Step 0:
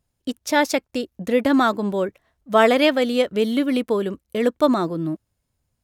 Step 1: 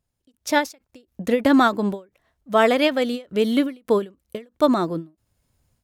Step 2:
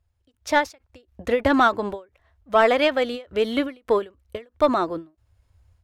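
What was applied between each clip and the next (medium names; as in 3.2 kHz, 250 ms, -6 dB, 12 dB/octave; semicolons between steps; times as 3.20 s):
level rider gain up to 12 dB; endings held to a fixed fall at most 230 dB/s; trim -4 dB
resonant low shelf 120 Hz +12.5 dB, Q 3; overdrive pedal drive 9 dB, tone 2 kHz, clips at -5 dBFS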